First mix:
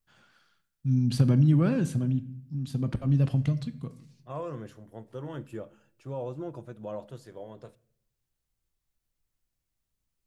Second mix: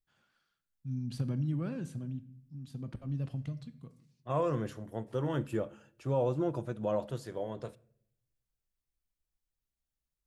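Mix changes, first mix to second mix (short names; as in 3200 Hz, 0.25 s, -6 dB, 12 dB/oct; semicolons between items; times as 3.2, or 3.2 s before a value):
first voice -12.0 dB; second voice +5.5 dB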